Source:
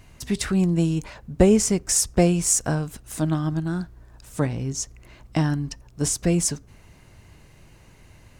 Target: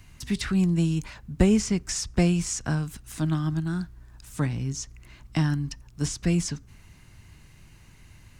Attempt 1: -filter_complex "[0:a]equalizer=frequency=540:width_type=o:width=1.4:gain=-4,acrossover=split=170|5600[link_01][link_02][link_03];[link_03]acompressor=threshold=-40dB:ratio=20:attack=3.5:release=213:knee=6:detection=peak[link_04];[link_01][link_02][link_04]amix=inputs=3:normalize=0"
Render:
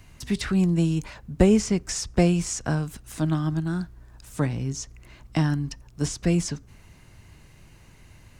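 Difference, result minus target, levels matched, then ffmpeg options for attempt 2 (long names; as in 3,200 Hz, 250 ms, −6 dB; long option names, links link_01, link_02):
500 Hz band +3.5 dB
-filter_complex "[0:a]equalizer=frequency=540:width_type=o:width=1.4:gain=-10.5,acrossover=split=170|5600[link_01][link_02][link_03];[link_03]acompressor=threshold=-40dB:ratio=20:attack=3.5:release=213:knee=6:detection=peak[link_04];[link_01][link_02][link_04]amix=inputs=3:normalize=0"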